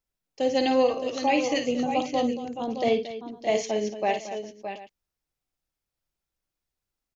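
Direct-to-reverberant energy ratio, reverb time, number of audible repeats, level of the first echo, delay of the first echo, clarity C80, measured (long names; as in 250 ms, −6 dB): no reverb audible, no reverb audible, 4, −9.0 dB, 53 ms, no reverb audible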